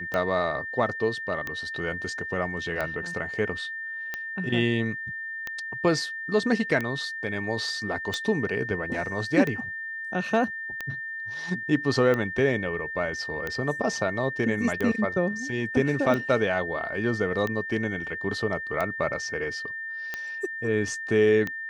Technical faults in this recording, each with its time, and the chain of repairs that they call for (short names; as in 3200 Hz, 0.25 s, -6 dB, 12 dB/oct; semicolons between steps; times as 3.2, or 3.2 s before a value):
tick 45 rpm -16 dBFS
tone 1800 Hz -32 dBFS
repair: de-click; notch 1800 Hz, Q 30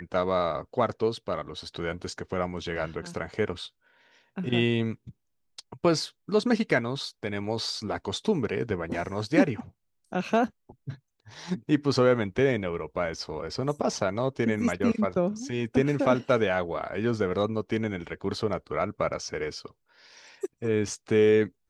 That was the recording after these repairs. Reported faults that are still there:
none